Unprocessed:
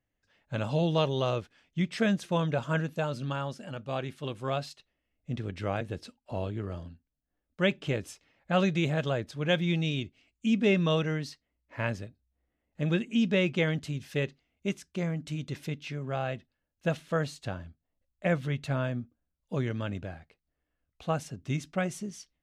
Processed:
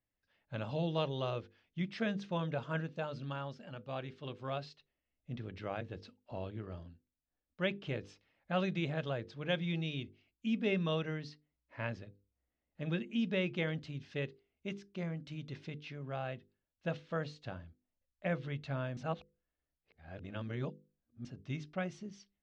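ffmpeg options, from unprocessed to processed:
-filter_complex "[0:a]asplit=3[a][b][c];[a]atrim=end=18.972[d];[b]atrim=start=18.968:end=21.252,asetpts=PTS-STARTPTS,areverse[e];[c]atrim=start=21.248[f];[d][e]acrossfade=d=0.004:c1=hsin:c2=hsin[g];[g][f]acrossfade=d=0.004:c1=hsin:c2=hsin,lowpass=f=5.2k:w=0.5412,lowpass=f=5.2k:w=1.3066,bandreject=f=50:t=h:w=6,bandreject=f=100:t=h:w=6,bandreject=f=150:t=h:w=6,bandreject=f=200:t=h:w=6,bandreject=f=250:t=h:w=6,bandreject=f=300:t=h:w=6,bandreject=f=350:t=h:w=6,bandreject=f=400:t=h:w=6,bandreject=f=450:t=h:w=6,bandreject=f=500:t=h:w=6,volume=-7.5dB"

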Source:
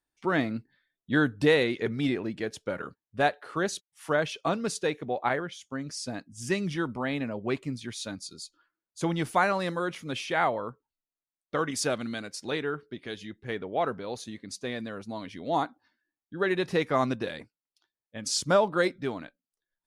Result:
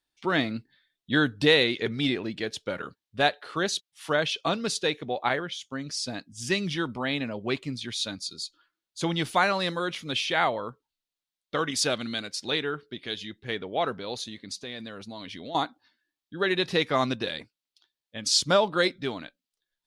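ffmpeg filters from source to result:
-filter_complex "[0:a]asettb=1/sr,asplit=3[a][b][c];[a]atrim=end=14.174[d];[b]atrim=start=14.17:end=15.55,asetpts=PTS-STARTPTS,afade=t=in:d=0.004:c=qsin,afade=t=out:st=1.376:d=0.004:c=qsin,acompressor=threshold=-36dB:ratio=5:attack=3.2:release=140:knee=1:detection=peak[e];[c]atrim=start=15.546[f];[d][e]acrossfade=d=0.004:c1=hsin:c2=qsin[g];[g][f]acrossfade=d=0.004:c1=qsin:c2=hsin,equalizer=f=3.7k:t=o:w=1.2:g=10.5"

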